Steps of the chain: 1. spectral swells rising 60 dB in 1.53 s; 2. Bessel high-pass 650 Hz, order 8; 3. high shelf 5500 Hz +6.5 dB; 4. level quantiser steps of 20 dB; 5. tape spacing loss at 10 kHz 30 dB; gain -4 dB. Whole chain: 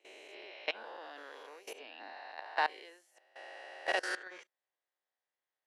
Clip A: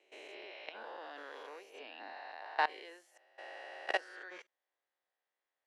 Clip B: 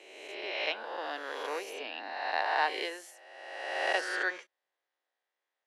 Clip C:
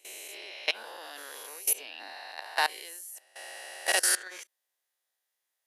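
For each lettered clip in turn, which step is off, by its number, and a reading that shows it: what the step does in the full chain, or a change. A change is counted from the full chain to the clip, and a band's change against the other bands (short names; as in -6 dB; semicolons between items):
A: 3, 1 kHz band +2.0 dB; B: 4, crest factor change -3.5 dB; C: 5, 8 kHz band +22.5 dB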